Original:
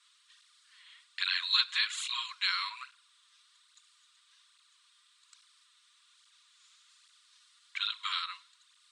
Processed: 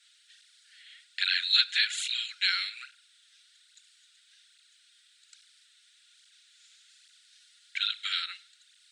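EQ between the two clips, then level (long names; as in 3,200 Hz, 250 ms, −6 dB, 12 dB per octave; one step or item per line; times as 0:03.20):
Butterworth high-pass 1,400 Hz 96 dB per octave
+4.0 dB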